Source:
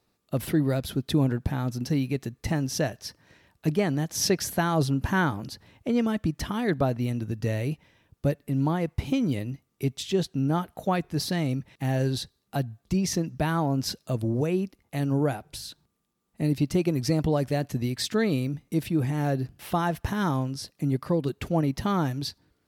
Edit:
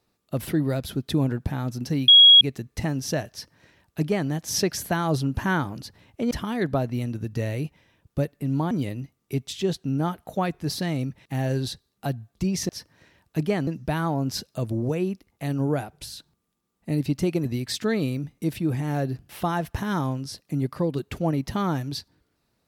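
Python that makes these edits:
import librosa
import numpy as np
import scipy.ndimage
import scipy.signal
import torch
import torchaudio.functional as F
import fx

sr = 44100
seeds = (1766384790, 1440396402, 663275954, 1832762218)

y = fx.edit(x, sr, fx.insert_tone(at_s=2.08, length_s=0.33, hz=3310.0, db=-8.0),
    fx.duplicate(start_s=2.98, length_s=0.98, to_s=13.19),
    fx.cut(start_s=5.98, length_s=0.4),
    fx.cut(start_s=8.78, length_s=0.43),
    fx.cut(start_s=16.97, length_s=0.78), tone=tone)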